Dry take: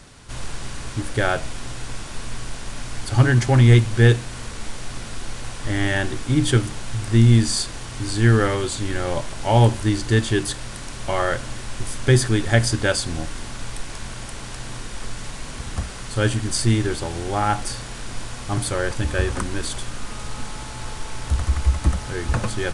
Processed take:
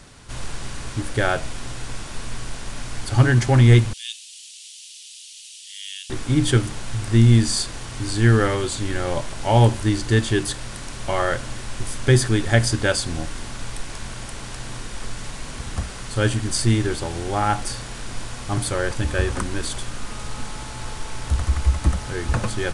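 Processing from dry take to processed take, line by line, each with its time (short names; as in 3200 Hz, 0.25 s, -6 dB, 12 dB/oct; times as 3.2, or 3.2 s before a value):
3.93–6.1 elliptic high-pass 2900 Hz, stop band 80 dB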